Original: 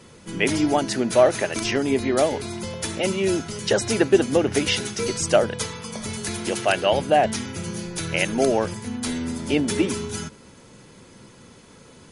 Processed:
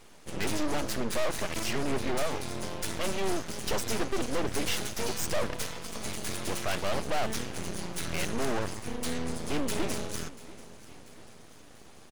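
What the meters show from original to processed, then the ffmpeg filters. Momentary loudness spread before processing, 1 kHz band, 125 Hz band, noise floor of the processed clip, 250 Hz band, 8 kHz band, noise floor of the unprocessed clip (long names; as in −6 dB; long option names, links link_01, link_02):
11 LU, −9.5 dB, −8.0 dB, −51 dBFS, −10.5 dB, −6.5 dB, −49 dBFS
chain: -af "aeval=exprs='(tanh(17.8*val(0)+0.75)-tanh(0.75))/17.8':channel_layout=same,aecho=1:1:689|1378|2067|2756|3445:0.112|0.064|0.0365|0.0208|0.0118,aeval=exprs='abs(val(0))':channel_layout=same"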